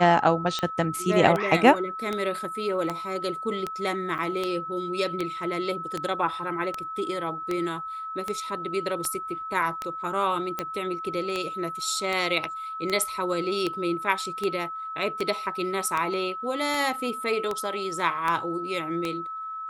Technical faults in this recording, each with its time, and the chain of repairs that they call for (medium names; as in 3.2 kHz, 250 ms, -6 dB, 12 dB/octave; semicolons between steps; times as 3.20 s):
tick 78 rpm -14 dBFS
whine 1.3 kHz -32 dBFS
4.18–4.19 s: dropout 6.5 ms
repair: de-click; band-stop 1.3 kHz, Q 30; interpolate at 4.18 s, 6.5 ms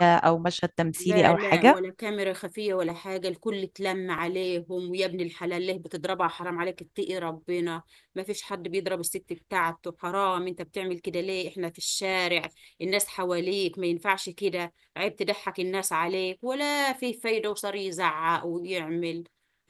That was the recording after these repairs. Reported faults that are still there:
nothing left